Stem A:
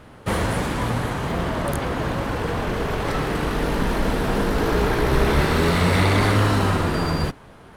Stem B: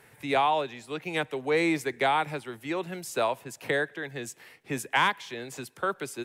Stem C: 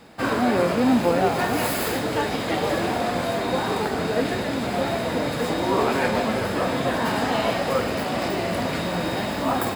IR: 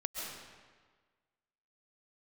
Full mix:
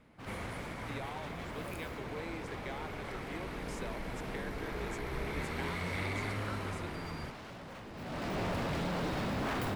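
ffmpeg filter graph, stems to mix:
-filter_complex "[0:a]equalizer=frequency=2200:width_type=o:width=0.27:gain=10,volume=-20dB[link_01];[1:a]lowpass=8200,acompressor=threshold=-32dB:ratio=6,adelay=650,volume=-10.5dB[link_02];[2:a]bass=frequency=250:gain=12,treble=frequency=4000:gain=-7,aeval=exprs='0.0944*(abs(mod(val(0)/0.0944+3,4)-2)-1)':channel_layout=same,volume=-9dB,afade=type=in:start_time=7.93:duration=0.48:silence=0.223872[link_03];[link_01][link_02][link_03]amix=inputs=3:normalize=0"

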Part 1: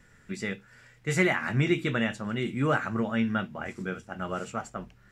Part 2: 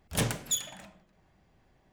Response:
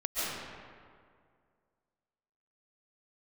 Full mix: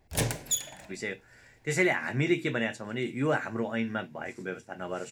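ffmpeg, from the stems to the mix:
-filter_complex "[0:a]highpass=150,adelay=600,volume=0.5dB[link_01];[1:a]volume=1.5dB[link_02];[link_01][link_02]amix=inputs=2:normalize=0,equalizer=frequency=200:width_type=o:width=0.33:gain=-10,equalizer=frequency=1250:width_type=o:width=0.33:gain=-10,equalizer=frequency=3150:width_type=o:width=0.33:gain=-5"

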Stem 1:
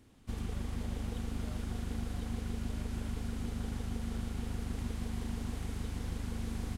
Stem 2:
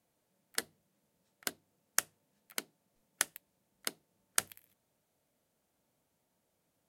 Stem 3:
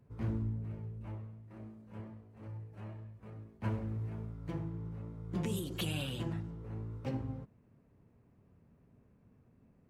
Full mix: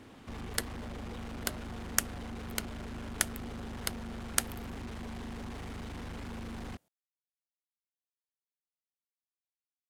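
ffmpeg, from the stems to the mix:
ffmpeg -i stem1.wav -i stem2.wav -filter_complex "[0:a]lowshelf=frequency=180:gain=5.5,asoftclip=type=tanh:threshold=-30.5dB,asplit=2[link_01][link_02];[link_02]highpass=frequency=720:poles=1,volume=28dB,asoftclip=type=tanh:threshold=-30.5dB[link_03];[link_01][link_03]amix=inputs=2:normalize=0,lowpass=frequency=1700:poles=1,volume=-6dB,volume=-4dB[link_04];[1:a]volume=2dB[link_05];[link_04][link_05]amix=inputs=2:normalize=0" out.wav

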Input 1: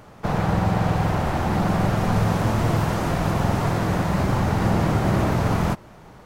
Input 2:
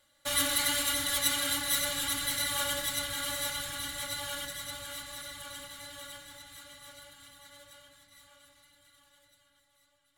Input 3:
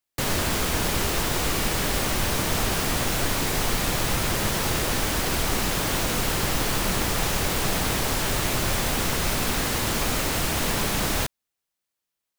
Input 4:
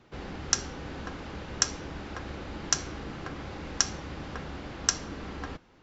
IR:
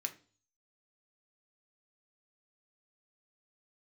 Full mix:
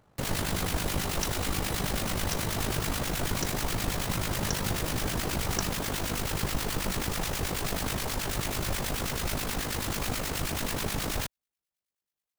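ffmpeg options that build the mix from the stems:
-filter_complex "[0:a]volume=-16dB[link_01];[1:a]volume=-13dB[link_02];[2:a]acrossover=split=1200[link_03][link_04];[link_03]aeval=exprs='val(0)*(1-0.7/2+0.7/2*cos(2*PI*9.3*n/s))':channel_layout=same[link_05];[link_04]aeval=exprs='val(0)*(1-0.7/2-0.7/2*cos(2*PI*9.3*n/s))':channel_layout=same[link_06];[link_05][link_06]amix=inputs=2:normalize=0,volume=-1.5dB[link_07];[3:a]adelay=700,volume=-8.5dB[link_08];[link_01][link_02][link_07][link_08]amix=inputs=4:normalize=0,equalizer=frequency=77:width_type=o:width=2.9:gain=2.5,tremolo=f=51:d=0.571"

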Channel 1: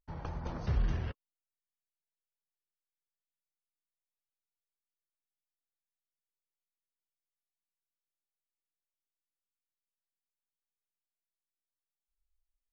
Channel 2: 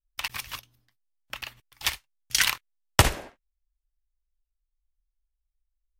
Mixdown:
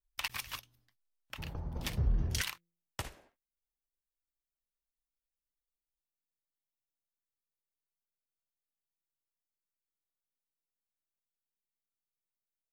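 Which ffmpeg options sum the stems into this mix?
ffmpeg -i stem1.wav -i stem2.wav -filter_complex "[0:a]equalizer=frequency=2800:width=0.31:gain=-14,bandreject=frequency=170.4:width_type=h:width=4,bandreject=frequency=340.8:width_type=h:width=4,bandreject=frequency=511.2:width_type=h:width=4,adelay=1300,volume=0.5dB[link_01];[1:a]volume=-5dB,afade=type=out:start_time=1.07:duration=0.49:silence=0.375837,afade=type=out:start_time=2.44:duration=0.27:silence=0.375837[link_02];[link_01][link_02]amix=inputs=2:normalize=0" out.wav

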